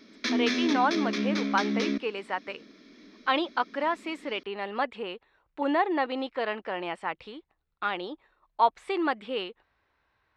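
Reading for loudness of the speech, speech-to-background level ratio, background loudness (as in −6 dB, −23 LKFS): −30.0 LKFS, −1.0 dB, −29.0 LKFS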